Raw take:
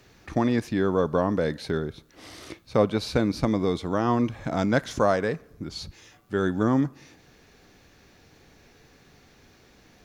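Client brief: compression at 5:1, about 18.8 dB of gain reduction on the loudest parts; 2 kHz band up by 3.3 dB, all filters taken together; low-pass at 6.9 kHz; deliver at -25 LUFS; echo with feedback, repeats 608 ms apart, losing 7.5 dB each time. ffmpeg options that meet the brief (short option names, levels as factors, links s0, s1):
-af "lowpass=6900,equalizer=f=2000:t=o:g=4.5,acompressor=threshold=0.0126:ratio=5,aecho=1:1:608|1216|1824|2432|3040:0.422|0.177|0.0744|0.0312|0.0131,volume=6.31"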